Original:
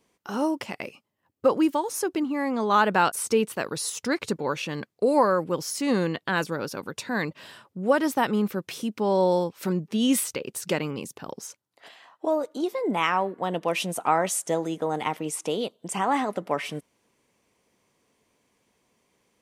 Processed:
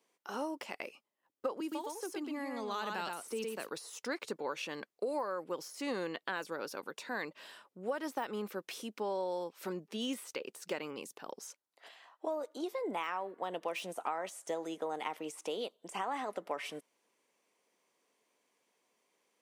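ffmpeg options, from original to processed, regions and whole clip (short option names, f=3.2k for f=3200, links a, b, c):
-filter_complex "[0:a]asettb=1/sr,asplit=3[a][b][c];[a]atrim=end=1.604[d];[b]atrim=start=1.6:end=3.69,asetpts=PTS-STARTPTS,afade=t=in:d=0.004:c=qsin,afade=t=out:st=2.086:d=0.004:c=qsin,aecho=1:1:115:0.562,atrim=end_sample=92169,acrossover=split=270|3000[e][f][g];[f]acompressor=threshold=-35dB:ratio=2:attack=3.2:release=140:knee=2.83:detection=peak[h];[e][h][g]amix=inputs=3:normalize=0[i];[c]atrim=start=3.686[j];[d][i]acrossfade=d=0.004:c1=hsin:c2=qsin[k];[k][j]acrossfade=d=0.004:c1=qsin:c2=hsin,deesser=0.75,highpass=360,acompressor=threshold=-26dB:ratio=6,volume=-6.5dB"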